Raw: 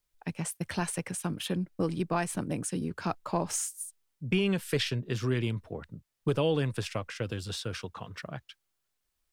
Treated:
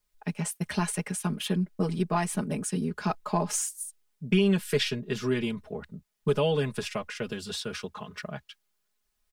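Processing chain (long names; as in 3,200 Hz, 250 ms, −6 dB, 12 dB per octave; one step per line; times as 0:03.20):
comb filter 4.8 ms, depth 88%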